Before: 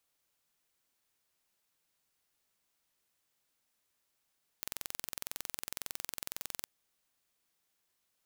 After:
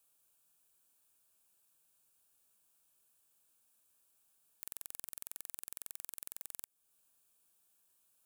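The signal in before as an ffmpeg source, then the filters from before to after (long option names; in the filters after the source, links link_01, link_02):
-f lavfi -i "aevalsrc='0.299*eq(mod(n,2014),0)':duration=2.01:sample_rate=44100"
-af "highshelf=frequency=6900:width_type=q:width=1.5:gain=7,alimiter=limit=-16.5dB:level=0:latency=1:release=341,asuperstop=centerf=2000:order=4:qfactor=4.4"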